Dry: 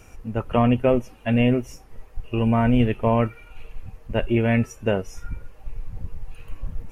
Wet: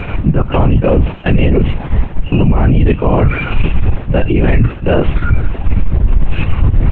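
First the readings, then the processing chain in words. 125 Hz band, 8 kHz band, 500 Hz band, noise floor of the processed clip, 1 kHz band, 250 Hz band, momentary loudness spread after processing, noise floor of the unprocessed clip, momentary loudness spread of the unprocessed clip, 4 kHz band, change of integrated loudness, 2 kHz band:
+13.0 dB, can't be measured, +7.5 dB, −25 dBFS, +6.5 dB, +7.0 dB, 6 LU, −48 dBFS, 20 LU, +8.5 dB, +8.0 dB, +9.5 dB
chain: parametric band 120 Hz +9.5 dB 0.32 octaves
linear-prediction vocoder at 8 kHz whisper
reversed playback
downward compressor 8 to 1, threshold −28 dBFS, peak gain reduction 18.5 dB
reversed playback
boost into a limiter +27 dB
level −1 dB
G.722 64 kbit/s 16,000 Hz

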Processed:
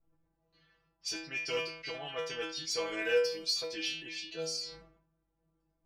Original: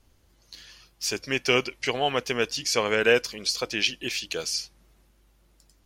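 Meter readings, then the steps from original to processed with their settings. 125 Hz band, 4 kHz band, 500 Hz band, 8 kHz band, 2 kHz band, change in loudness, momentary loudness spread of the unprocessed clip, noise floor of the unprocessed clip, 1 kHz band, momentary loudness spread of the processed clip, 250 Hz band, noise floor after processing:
−15.0 dB, −8.0 dB, −8.0 dB, −10.5 dB, −10.5 dB, −9.0 dB, 8 LU, −63 dBFS, −14.0 dB, 11 LU, −12.0 dB, −80 dBFS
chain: dynamic equaliser 4,800 Hz, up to +7 dB, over −45 dBFS, Q 4.8
stiff-string resonator 160 Hz, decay 0.52 s, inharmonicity 0.002
in parallel at −5.5 dB: soft clipping −32 dBFS, distortion −10 dB
on the sum: low-pass that shuts in the quiet parts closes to 1,000 Hz, open at −32 dBFS
level that may fall only so fast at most 86 dB per second

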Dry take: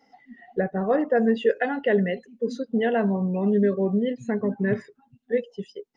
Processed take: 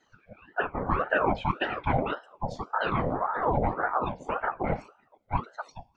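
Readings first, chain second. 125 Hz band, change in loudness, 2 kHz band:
−3.0 dB, −5.0 dB, +0.5 dB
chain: random phases in short frames
coupled-rooms reverb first 0.41 s, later 1.7 s, from −27 dB, DRR 14.5 dB
ring modulator whose carrier an LFO sweeps 720 Hz, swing 55%, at 1.8 Hz
level −2.5 dB

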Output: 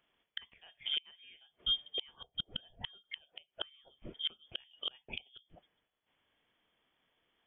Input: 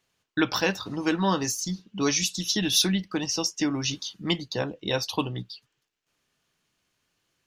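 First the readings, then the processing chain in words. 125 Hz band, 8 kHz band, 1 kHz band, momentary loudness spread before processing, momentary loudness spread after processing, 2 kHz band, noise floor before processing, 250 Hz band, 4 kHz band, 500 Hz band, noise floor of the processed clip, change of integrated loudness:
−27.0 dB, below −40 dB, −26.0 dB, 11 LU, 21 LU, −18.5 dB, −79 dBFS, −33.0 dB, −7.5 dB, −26.0 dB, below −85 dBFS, −13.0 dB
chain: voice inversion scrambler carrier 3,400 Hz
gate with flip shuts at −22 dBFS, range −33 dB
level −1 dB

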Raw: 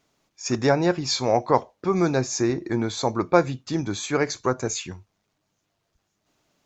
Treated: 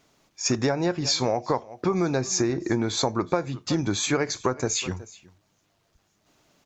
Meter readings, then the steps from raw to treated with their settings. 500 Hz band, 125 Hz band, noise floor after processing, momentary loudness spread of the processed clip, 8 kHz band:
−3.5 dB, −1.0 dB, −69 dBFS, 4 LU, can't be measured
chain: single-tap delay 369 ms −23.5 dB
downward compressor 16 to 1, threshold −26 dBFS, peak gain reduction 16 dB
level +6 dB

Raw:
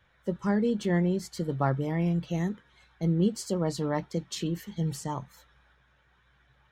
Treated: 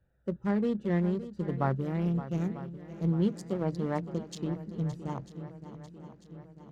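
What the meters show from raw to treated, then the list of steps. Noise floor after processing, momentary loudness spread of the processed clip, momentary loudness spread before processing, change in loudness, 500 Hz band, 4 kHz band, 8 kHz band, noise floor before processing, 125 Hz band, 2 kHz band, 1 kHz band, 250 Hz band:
−58 dBFS, 18 LU, 8 LU, −2.5 dB, −3.0 dB, −10.0 dB, −12.5 dB, −66 dBFS, −2.0 dB, −5.0 dB, −3.0 dB, −2.0 dB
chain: adaptive Wiener filter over 41 samples
on a send: feedback echo with a long and a short gap by turns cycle 945 ms, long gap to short 1.5 to 1, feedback 53%, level −13.5 dB
on the sum: level −2 dB

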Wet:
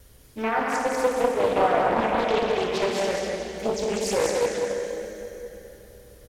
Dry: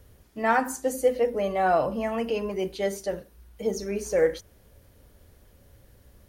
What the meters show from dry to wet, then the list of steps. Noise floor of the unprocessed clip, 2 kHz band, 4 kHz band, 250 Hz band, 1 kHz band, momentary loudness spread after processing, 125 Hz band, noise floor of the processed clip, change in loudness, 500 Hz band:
−58 dBFS, +3.0 dB, +9.0 dB, +2.0 dB, +3.5 dB, 15 LU, +2.0 dB, −51 dBFS, +2.0 dB, +2.5 dB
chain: reverb reduction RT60 1.8 s
treble cut that deepens with the level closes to 3,000 Hz, closed at −23 dBFS
high-shelf EQ 2,800 Hz +10 dB
brickwall limiter −18 dBFS, peak gain reduction 10 dB
pitch vibrato 0.58 Hz 6.2 cents
single-tap delay 193 ms −4 dB
dense smooth reverb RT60 3.8 s, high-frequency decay 0.75×, DRR −2.5 dB
highs frequency-modulated by the lows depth 0.63 ms

